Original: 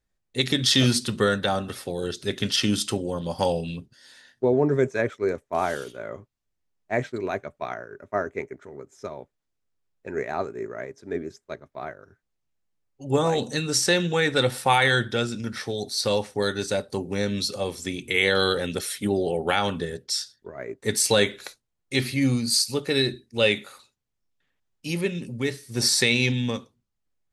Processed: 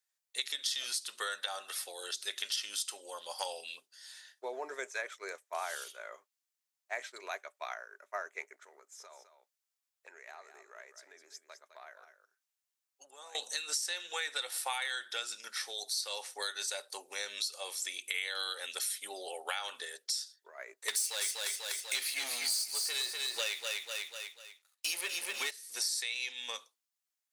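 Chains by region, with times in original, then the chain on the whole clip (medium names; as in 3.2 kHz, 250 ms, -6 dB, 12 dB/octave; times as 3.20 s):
8.79–13.35 s: compression 10:1, threshold -36 dBFS + delay 208 ms -10 dB
20.88–25.51 s: waveshaping leveller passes 3 + feedback delay 246 ms, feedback 35%, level -6 dB
whole clip: Bessel high-pass 950 Hz, order 4; treble shelf 4.3 kHz +11 dB; compression 6:1, threshold -28 dBFS; trim -5 dB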